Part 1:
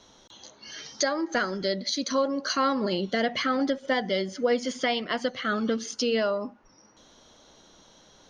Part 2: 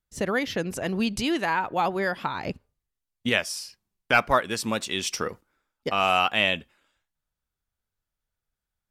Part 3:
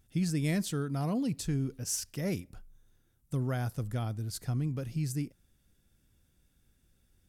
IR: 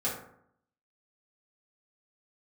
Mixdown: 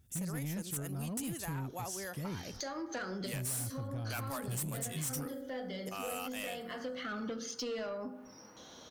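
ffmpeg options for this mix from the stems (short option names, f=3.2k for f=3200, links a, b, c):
-filter_complex "[0:a]acrossover=split=130[a][b];[b]acompressor=threshold=-33dB:ratio=2[c];[a][c]amix=inputs=2:normalize=0,adelay=1600,volume=1dB,asplit=2[d][e];[e]volume=-13.5dB[f];[1:a]aexciter=amount=14.2:drive=4.6:freq=6.6k,adynamicequalizer=threshold=0.0355:dfrequency=6900:dqfactor=0.7:tfrequency=6900:tqfactor=0.7:attack=5:release=100:ratio=0.375:range=3:mode=boostabove:tftype=highshelf,volume=-10.5dB,asplit=2[g][h];[2:a]lowshelf=f=160:g=9.5,volume=-2dB[i];[h]apad=whole_len=436524[j];[d][j]sidechaincompress=threshold=-44dB:ratio=8:attack=36:release=579[k];[3:a]atrim=start_sample=2205[l];[f][l]afir=irnorm=-1:irlink=0[m];[k][g][i][m]amix=inputs=4:normalize=0,highpass=67,asoftclip=type=tanh:threshold=-24.5dB,acompressor=threshold=-43dB:ratio=2"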